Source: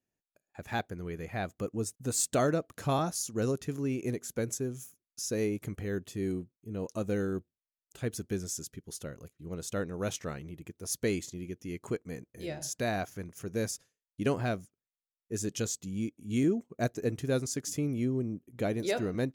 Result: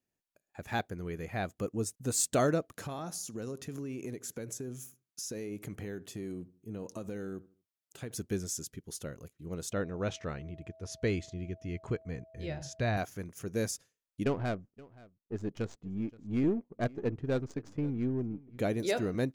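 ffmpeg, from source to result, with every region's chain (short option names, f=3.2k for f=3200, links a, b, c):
-filter_complex "[0:a]asettb=1/sr,asplit=3[a][b][c];[a]atrim=end=2.734[d];[b]atrim=start=2.73:end=8.15,asetpts=PTS-STARTPTS,afade=t=in:d=0.004:c=qsin,afade=t=out:st=5.416:d=0.004:c=qsin,highpass=100,acompressor=threshold=-35dB:ratio=12:attack=3.2:release=140:knee=1:detection=peak,asplit=2[e][f];[f]adelay=77,lowpass=f=1.4k:p=1,volume=-18.5dB,asplit=2[g][h];[h]adelay=77,lowpass=f=1.4k:p=1,volume=0.37,asplit=2[i][j];[j]adelay=77,lowpass=f=1.4k:p=1,volume=0.37[k];[e][g][i][k]amix=inputs=4:normalize=0,atrim=end_sample=239022[l];[c]atrim=start=8.146[m];[d][l]acrossfade=d=0.004:c1=hsin:c2=qsin[n];[n][m]acrossfade=d=0.004:c1=qsin:c2=hsin,asettb=1/sr,asplit=3[o][p][q];[o]atrim=end=9.724[r];[p]atrim=start=9.72:end=12.97,asetpts=PTS-STARTPTS,afade=t=in:d=0.004:c=qsin,afade=t=out:st=3.246:d=0.004:c=qsin,lowpass=4.1k,aeval=exprs='val(0)+0.002*sin(2*PI*650*n/s)':c=same,asubboost=boost=5.5:cutoff=120[s];[q]atrim=start=12.966[t];[r][s]acrossfade=d=0.004:c1=hsin:c2=qsin[u];[u][t]acrossfade=d=0.004:c1=qsin:c2=hsin,asettb=1/sr,asplit=3[v][w][x];[v]atrim=end=14.244[y];[w]atrim=start=14.24:end=18.58,asetpts=PTS-STARTPTS,afade=t=in:d=0.004:c=qsin,afade=t=out:st=4.336:d=0.004:c=qsin,aeval=exprs='if(lt(val(0),0),0.708*val(0),val(0))':c=same,adynamicsmooth=sensitivity=5:basefreq=970,aecho=1:1:524:0.0794,atrim=end_sample=191394[z];[x]atrim=start=18.576[aa];[y][z]acrossfade=d=0.004:c1=hsin:c2=qsin[ab];[ab][aa]acrossfade=d=0.004:c1=qsin:c2=hsin"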